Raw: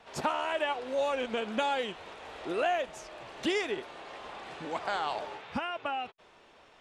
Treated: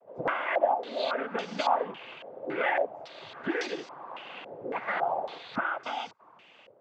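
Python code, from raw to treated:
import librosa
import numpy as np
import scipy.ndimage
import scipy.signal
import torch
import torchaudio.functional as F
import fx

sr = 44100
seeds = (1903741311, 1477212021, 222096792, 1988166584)

y = fx.dmg_noise_colour(x, sr, seeds[0], colour='blue', level_db=-57.0)
y = fx.noise_vocoder(y, sr, seeds[1], bands=16)
y = fx.filter_held_lowpass(y, sr, hz=3.6, low_hz=540.0, high_hz=5500.0)
y = y * 10.0 ** (-1.5 / 20.0)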